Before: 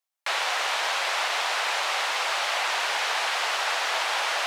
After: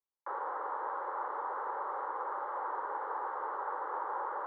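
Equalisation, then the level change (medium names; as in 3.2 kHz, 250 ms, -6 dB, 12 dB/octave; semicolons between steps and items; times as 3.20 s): four-pole ladder low-pass 1.1 kHz, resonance 25%; distance through air 150 m; static phaser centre 680 Hz, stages 6; +4.5 dB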